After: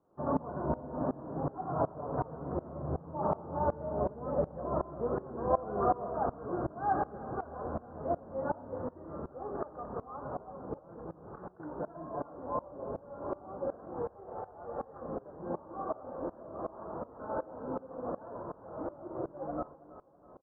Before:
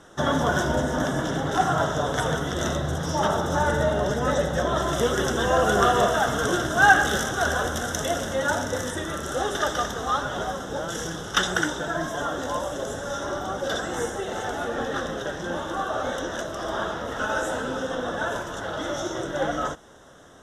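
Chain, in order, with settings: high-pass 67 Hz 6 dB/octave; careless resampling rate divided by 8×, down filtered, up hold; Chebyshev low-pass 1.1 kHz, order 4; 10.79–11.60 s: compressor with a negative ratio -38 dBFS, ratio -1; 14.02–15.02 s: peaking EQ 270 Hz -11.5 dB 1 oct; feedback delay 326 ms, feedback 52%, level -16.5 dB; sawtooth tremolo in dB swelling 2.7 Hz, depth 21 dB; trim -2.5 dB

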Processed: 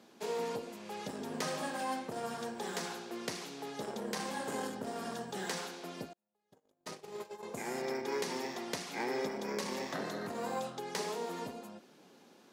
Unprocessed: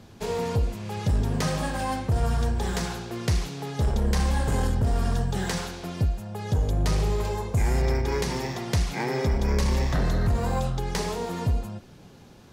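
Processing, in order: high-pass 230 Hz 24 dB/octave; 6.13–7.43 s: gate -29 dBFS, range -40 dB; trim -7 dB

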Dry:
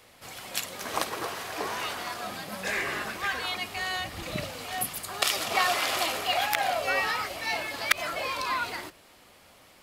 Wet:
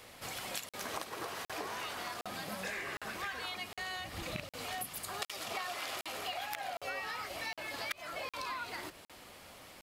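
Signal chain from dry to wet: rattle on loud lows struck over -31 dBFS, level -12 dBFS; compression 6:1, threshold -40 dBFS, peak gain reduction 21.5 dB; crackling interface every 0.76 s, samples 2048, zero, from 0.69 s; trim +2 dB

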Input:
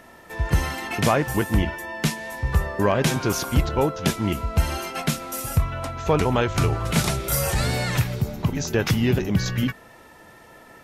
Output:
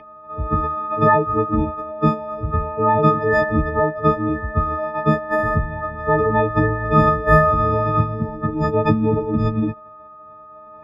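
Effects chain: partials quantised in pitch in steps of 6 st; formant shift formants +4 st; distance through air 380 m; trim +2 dB

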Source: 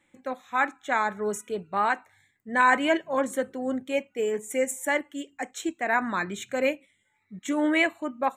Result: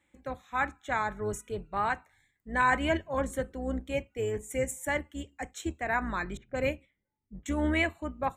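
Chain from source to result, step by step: octave divider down 2 oct, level -1 dB; 6.37–7.46 s: level-controlled noise filter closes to 340 Hz, open at -23.5 dBFS; trim -5 dB

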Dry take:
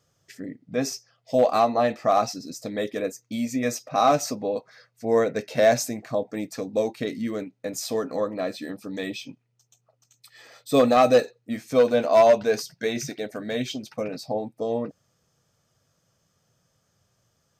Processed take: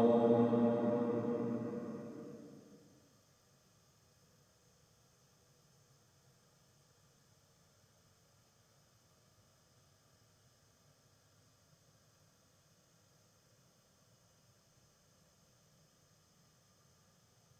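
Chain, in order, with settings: Paulstretch 11×, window 0.50 s, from 14.83 s

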